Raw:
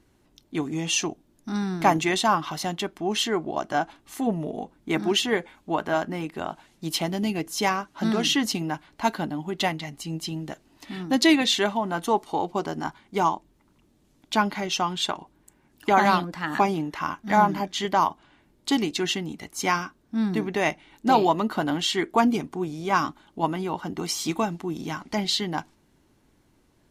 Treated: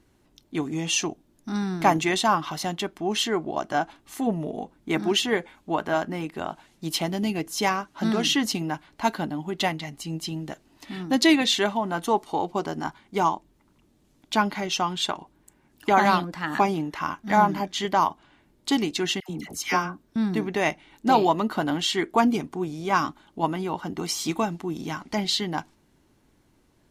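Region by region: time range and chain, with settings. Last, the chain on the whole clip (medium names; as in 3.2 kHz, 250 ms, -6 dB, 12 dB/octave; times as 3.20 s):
19.20–20.16 s: peaking EQ 13 kHz +4 dB 0.23 oct + phase dispersion lows, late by 92 ms, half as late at 1.1 kHz
whole clip: none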